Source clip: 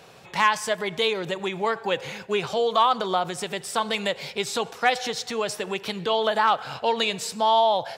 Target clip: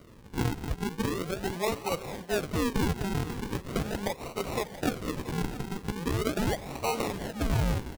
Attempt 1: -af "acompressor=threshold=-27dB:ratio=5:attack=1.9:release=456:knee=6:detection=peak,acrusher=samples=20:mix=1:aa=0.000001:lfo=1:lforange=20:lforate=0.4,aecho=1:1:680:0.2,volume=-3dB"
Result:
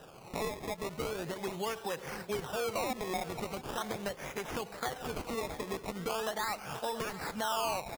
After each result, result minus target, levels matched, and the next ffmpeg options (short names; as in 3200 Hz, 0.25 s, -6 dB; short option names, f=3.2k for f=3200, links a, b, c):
decimation with a swept rate: distortion -18 dB; compressor: peak gain reduction +7 dB
-af "acompressor=threshold=-27dB:ratio=5:attack=1.9:release=456:knee=6:detection=peak,acrusher=samples=51:mix=1:aa=0.000001:lfo=1:lforange=51:lforate=0.4,aecho=1:1:680:0.2,volume=-3dB"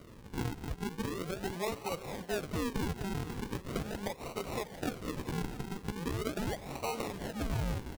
compressor: peak gain reduction +7 dB
-af "acompressor=threshold=-18dB:ratio=5:attack=1.9:release=456:knee=6:detection=peak,acrusher=samples=51:mix=1:aa=0.000001:lfo=1:lforange=51:lforate=0.4,aecho=1:1:680:0.2,volume=-3dB"